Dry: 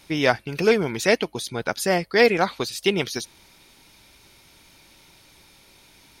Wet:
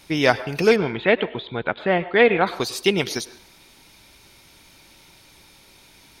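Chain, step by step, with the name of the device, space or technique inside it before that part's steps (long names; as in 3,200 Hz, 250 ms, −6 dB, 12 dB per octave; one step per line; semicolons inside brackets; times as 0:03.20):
0:00.76–0:02.47: elliptic low-pass filter 3,600 Hz, stop band 40 dB
filtered reverb send (on a send: high-pass filter 320 Hz + low-pass filter 5,200 Hz 12 dB per octave + convolution reverb RT60 0.55 s, pre-delay 93 ms, DRR 15 dB)
on the sum: level +2 dB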